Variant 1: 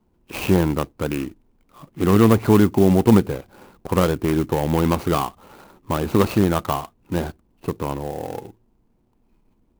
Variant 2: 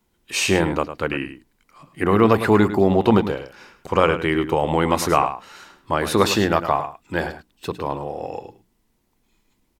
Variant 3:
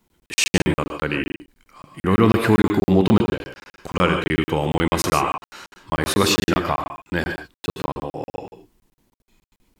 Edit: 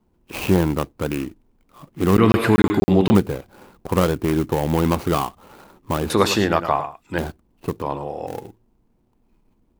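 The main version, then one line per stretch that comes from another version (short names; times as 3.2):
1
2.17–3.15 from 3
6.1–7.18 from 2
7.82–8.27 from 2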